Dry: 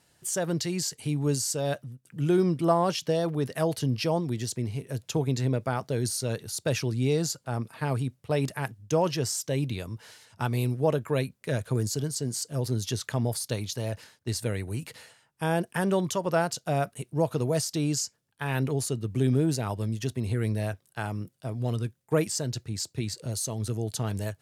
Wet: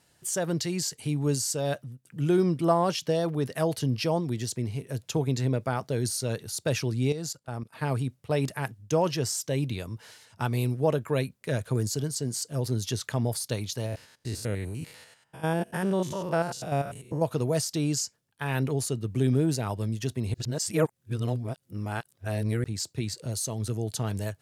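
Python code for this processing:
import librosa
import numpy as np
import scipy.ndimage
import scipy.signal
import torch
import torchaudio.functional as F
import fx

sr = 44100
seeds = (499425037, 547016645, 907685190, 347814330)

y = fx.level_steps(x, sr, step_db=17, at=(7.12, 7.75))
y = fx.spec_steps(y, sr, hold_ms=100, at=(13.86, 17.22))
y = fx.edit(y, sr, fx.reverse_span(start_s=20.34, length_s=2.3), tone=tone)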